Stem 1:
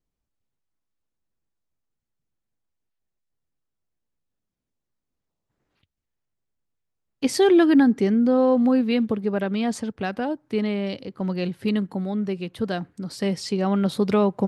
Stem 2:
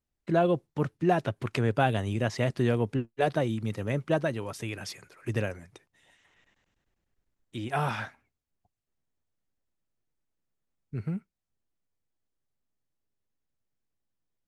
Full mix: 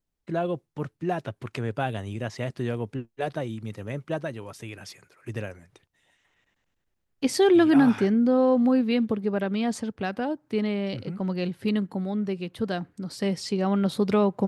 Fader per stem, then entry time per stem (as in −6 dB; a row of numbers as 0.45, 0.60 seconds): −2.0, −3.5 decibels; 0.00, 0.00 seconds